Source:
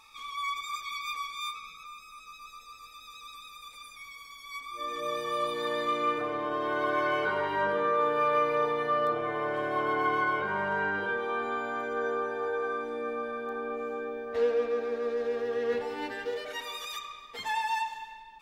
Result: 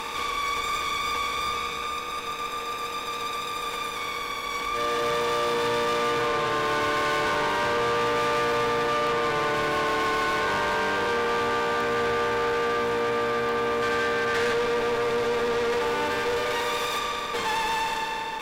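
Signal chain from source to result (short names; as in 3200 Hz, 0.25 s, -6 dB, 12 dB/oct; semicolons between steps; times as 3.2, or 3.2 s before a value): per-bin compression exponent 0.4; 13.82–14.53 bell 1700 Hz +10 dB 0.6 oct; tube stage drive 28 dB, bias 0.65; gain +6 dB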